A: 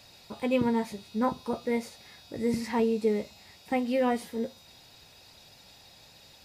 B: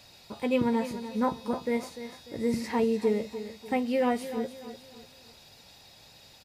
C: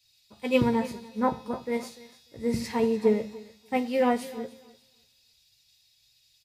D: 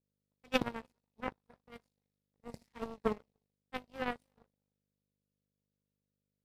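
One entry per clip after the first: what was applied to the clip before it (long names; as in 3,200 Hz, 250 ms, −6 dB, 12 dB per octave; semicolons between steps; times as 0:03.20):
repeating echo 296 ms, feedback 38%, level −12 dB
on a send at −11.5 dB: convolution reverb RT60 0.70 s, pre-delay 4 ms; on the sum: multiband upward and downward expander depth 100%
hum with harmonics 50 Hz, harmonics 5, −40 dBFS −2 dB per octave; power curve on the samples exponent 3; level −1 dB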